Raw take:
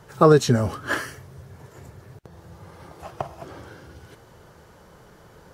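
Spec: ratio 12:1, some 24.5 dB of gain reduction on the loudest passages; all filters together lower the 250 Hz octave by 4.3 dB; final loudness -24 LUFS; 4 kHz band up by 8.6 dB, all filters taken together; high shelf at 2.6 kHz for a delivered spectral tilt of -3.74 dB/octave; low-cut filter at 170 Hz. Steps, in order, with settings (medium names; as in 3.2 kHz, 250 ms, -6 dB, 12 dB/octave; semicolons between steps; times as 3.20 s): high-pass 170 Hz; peaking EQ 250 Hz -4.5 dB; treble shelf 2.6 kHz +8 dB; peaking EQ 4 kHz +3.5 dB; compression 12:1, threshold -36 dBFS; trim +19.5 dB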